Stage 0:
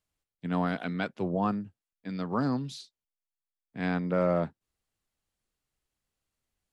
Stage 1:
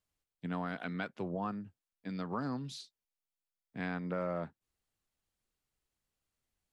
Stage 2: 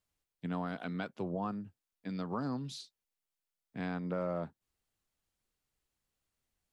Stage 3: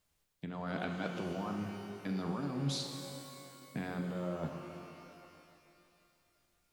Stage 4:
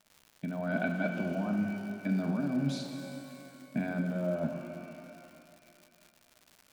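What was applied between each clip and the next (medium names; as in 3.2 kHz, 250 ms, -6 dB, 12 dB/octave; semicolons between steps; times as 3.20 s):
dynamic bell 1.5 kHz, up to +4 dB, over -44 dBFS, Q 0.87; compression 2.5:1, threshold -34 dBFS, peak gain reduction 9 dB; trim -2.5 dB
dynamic bell 1.9 kHz, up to -6 dB, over -55 dBFS, Q 1.4; trim +1 dB
compressor with a negative ratio -41 dBFS, ratio -1; pitch-shifted reverb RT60 2.7 s, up +12 st, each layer -8 dB, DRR 4 dB; trim +2.5 dB
small resonant body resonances 230/620/1500/2300 Hz, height 17 dB, ringing for 35 ms; crackle 190 per s -39 dBFS; trim -5.5 dB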